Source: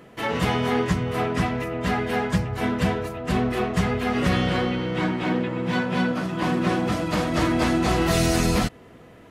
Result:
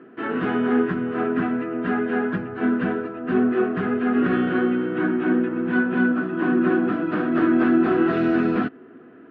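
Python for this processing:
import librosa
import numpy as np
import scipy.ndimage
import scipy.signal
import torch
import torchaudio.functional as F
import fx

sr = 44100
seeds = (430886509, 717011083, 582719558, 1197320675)

y = fx.cabinet(x, sr, low_hz=240.0, low_slope=12, high_hz=2300.0, hz=(260.0, 370.0, 550.0, 910.0, 1500.0, 2100.0), db=(10, 9, -9, -9, 8, -9))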